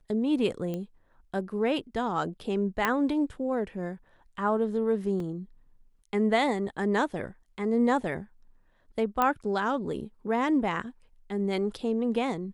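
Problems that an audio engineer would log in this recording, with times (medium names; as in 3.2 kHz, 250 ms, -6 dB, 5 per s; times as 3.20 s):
0.74 s: pop -22 dBFS
2.85 s: pop -11 dBFS
5.20 s: dropout 2.3 ms
9.22 s: pop -12 dBFS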